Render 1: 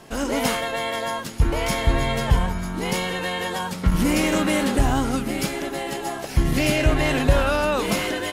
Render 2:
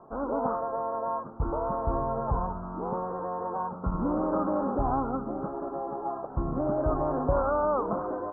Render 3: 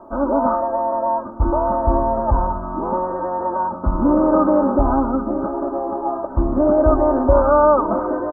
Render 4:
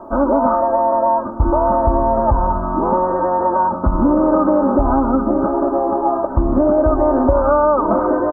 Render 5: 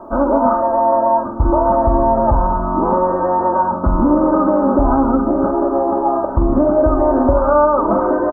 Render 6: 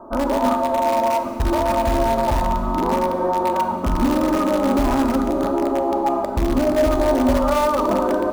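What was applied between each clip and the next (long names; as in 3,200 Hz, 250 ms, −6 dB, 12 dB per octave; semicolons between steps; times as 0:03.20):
Butterworth low-pass 1,300 Hz 72 dB per octave; low-shelf EQ 380 Hz −12 dB
comb filter 3.3 ms, depth 84%; level +8.5 dB
downward compressor, threshold −17 dBFS, peak gain reduction 9 dB; level +6.5 dB
double-tracking delay 44 ms −8 dB
in parallel at −9.5 dB: wrap-around overflow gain 7.5 dB; on the sum: convolution reverb RT60 2.5 s, pre-delay 4 ms, DRR 7.5 dB; level −7.5 dB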